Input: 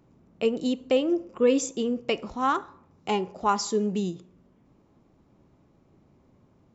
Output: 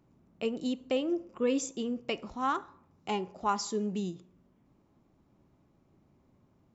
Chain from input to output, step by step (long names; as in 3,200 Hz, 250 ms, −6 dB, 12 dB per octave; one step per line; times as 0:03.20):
parametric band 470 Hz −3.5 dB 0.38 octaves
level −5.5 dB